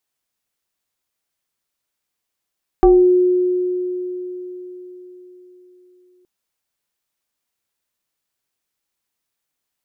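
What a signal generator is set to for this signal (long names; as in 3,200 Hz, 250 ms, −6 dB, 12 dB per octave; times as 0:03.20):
two-operator FM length 3.42 s, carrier 362 Hz, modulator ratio 1.1, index 1, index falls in 0.39 s exponential, decay 4.38 s, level −6 dB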